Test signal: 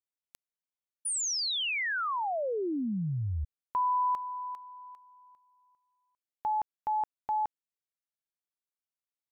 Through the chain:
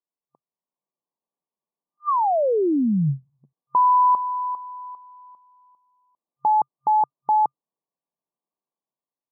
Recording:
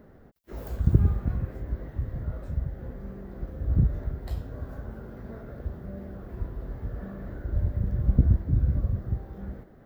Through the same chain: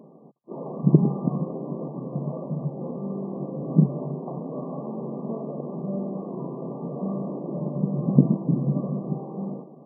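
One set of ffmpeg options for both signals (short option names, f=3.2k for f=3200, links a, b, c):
-af "afftfilt=real='re*between(b*sr/4096,130,1200)':imag='im*between(b*sr/4096,130,1200)':win_size=4096:overlap=0.75,dynaudnorm=f=300:g=5:m=6.5dB,volume=5dB"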